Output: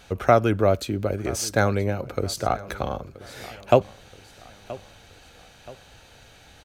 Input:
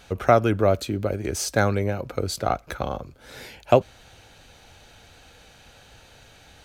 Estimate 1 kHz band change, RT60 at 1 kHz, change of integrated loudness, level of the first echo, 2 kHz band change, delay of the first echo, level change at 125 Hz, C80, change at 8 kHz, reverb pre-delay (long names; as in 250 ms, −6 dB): 0.0 dB, no reverb audible, 0.0 dB, −19.0 dB, 0.0 dB, 976 ms, 0.0 dB, no reverb audible, 0.0 dB, no reverb audible